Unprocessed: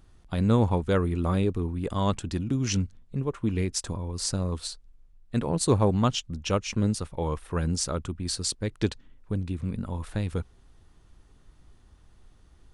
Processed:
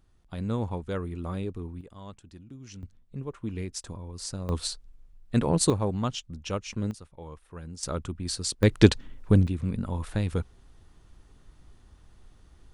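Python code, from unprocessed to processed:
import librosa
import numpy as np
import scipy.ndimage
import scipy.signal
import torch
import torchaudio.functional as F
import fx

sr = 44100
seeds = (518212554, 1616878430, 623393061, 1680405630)

y = fx.gain(x, sr, db=fx.steps((0.0, -8.0), (1.81, -18.5), (2.83, -7.0), (4.49, 3.0), (5.7, -5.5), (6.91, -14.0), (7.83, -1.5), (8.63, 10.0), (9.47, 1.5)))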